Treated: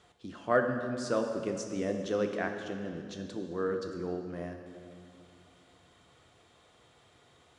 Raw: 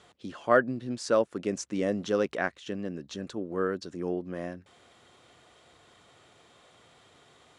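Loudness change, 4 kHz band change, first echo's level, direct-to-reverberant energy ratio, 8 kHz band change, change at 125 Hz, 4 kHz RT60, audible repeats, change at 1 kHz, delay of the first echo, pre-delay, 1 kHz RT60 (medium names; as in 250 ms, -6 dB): -3.5 dB, -4.0 dB, no echo, 4.0 dB, -4.0 dB, -1.5 dB, 1.9 s, no echo, -4.0 dB, no echo, 3 ms, 2.1 s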